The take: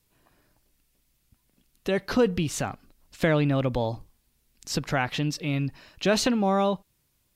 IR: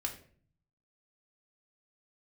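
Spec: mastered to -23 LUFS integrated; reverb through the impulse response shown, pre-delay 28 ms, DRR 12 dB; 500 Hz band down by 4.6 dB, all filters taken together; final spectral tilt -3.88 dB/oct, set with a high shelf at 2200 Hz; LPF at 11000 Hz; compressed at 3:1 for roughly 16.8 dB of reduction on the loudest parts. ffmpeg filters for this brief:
-filter_complex "[0:a]lowpass=11k,equalizer=f=500:t=o:g=-6,highshelf=f=2.2k:g=5.5,acompressor=threshold=-43dB:ratio=3,asplit=2[a][b];[1:a]atrim=start_sample=2205,adelay=28[c];[b][c]afir=irnorm=-1:irlink=0,volume=-13dB[d];[a][d]amix=inputs=2:normalize=0,volume=18.5dB"

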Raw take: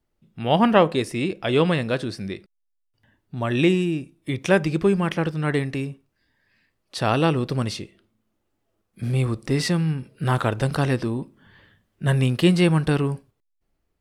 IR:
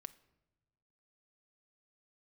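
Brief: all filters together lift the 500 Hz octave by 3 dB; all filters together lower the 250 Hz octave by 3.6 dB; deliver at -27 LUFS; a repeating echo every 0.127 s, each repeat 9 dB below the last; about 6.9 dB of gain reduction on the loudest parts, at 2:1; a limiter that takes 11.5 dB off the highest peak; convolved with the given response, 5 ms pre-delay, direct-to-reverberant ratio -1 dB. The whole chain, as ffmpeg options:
-filter_complex "[0:a]equalizer=f=250:t=o:g=-8.5,equalizer=f=500:t=o:g=6.5,acompressor=threshold=-22dB:ratio=2,alimiter=limit=-20.5dB:level=0:latency=1,aecho=1:1:127|254|381|508:0.355|0.124|0.0435|0.0152,asplit=2[a][b];[1:a]atrim=start_sample=2205,adelay=5[c];[b][c]afir=irnorm=-1:irlink=0,volume=6.5dB[d];[a][d]amix=inputs=2:normalize=0"

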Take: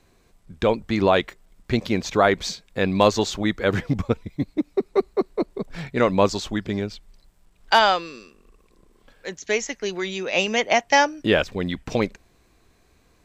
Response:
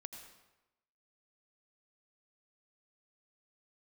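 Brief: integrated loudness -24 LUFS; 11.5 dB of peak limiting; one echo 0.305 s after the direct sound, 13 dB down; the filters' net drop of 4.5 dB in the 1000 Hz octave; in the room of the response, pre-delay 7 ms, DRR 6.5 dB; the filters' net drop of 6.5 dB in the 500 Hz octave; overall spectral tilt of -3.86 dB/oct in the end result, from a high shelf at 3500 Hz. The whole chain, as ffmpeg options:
-filter_complex "[0:a]equalizer=f=500:t=o:g=-7.5,equalizer=f=1k:t=o:g=-3.5,highshelf=f=3.5k:g=5,alimiter=limit=-14.5dB:level=0:latency=1,aecho=1:1:305:0.224,asplit=2[a][b];[1:a]atrim=start_sample=2205,adelay=7[c];[b][c]afir=irnorm=-1:irlink=0,volume=-2dB[d];[a][d]amix=inputs=2:normalize=0,volume=3.5dB"

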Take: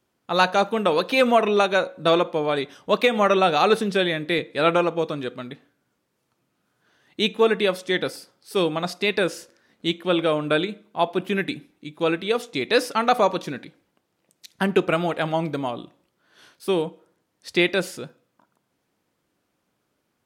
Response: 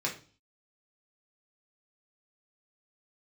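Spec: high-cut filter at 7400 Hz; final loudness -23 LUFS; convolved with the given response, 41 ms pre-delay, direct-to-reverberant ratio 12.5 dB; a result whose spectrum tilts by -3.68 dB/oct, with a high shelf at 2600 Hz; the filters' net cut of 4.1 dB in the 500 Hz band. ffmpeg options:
-filter_complex "[0:a]lowpass=7.4k,equalizer=f=500:t=o:g=-5.5,highshelf=f=2.6k:g=8.5,asplit=2[a][b];[1:a]atrim=start_sample=2205,adelay=41[c];[b][c]afir=irnorm=-1:irlink=0,volume=-18.5dB[d];[a][d]amix=inputs=2:normalize=0,volume=-1dB"

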